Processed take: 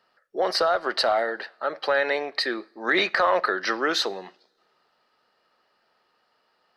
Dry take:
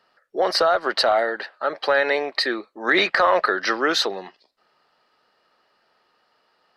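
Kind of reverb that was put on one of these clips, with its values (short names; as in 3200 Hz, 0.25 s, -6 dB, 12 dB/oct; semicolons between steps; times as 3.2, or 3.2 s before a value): two-slope reverb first 0.48 s, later 2.1 s, from -22 dB, DRR 19.5 dB; gain -3.5 dB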